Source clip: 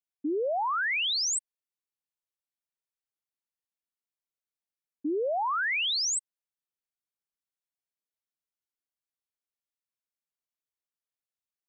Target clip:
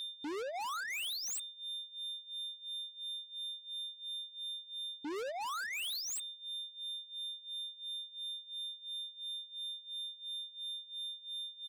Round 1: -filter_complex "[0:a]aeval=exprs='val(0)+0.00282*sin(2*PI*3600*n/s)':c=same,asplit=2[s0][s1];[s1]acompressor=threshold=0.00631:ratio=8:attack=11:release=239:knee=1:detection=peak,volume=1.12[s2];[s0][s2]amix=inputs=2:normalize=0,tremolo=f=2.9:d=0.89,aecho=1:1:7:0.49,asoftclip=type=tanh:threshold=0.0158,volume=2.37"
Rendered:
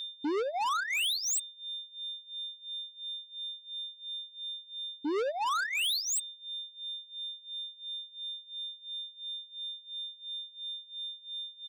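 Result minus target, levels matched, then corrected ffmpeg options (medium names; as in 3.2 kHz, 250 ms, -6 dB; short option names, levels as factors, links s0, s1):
saturation: distortion -5 dB
-filter_complex "[0:a]aeval=exprs='val(0)+0.00282*sin(2*PI*3600*n/s)':c=same,asplit=2[s0][s1];[s1]acompressor=threshold=0.00631:ratio=8:attack=11:release=239:knee=1:detection=peak,volume=1.12[s2];[s0][s2]amix=inputs=2:normalize=0,tremolo=f=2.9:d=0.89,aecho=1:1:7:0.49,asoftclip=type=tanh:threshold=0.00531,volume=2.37"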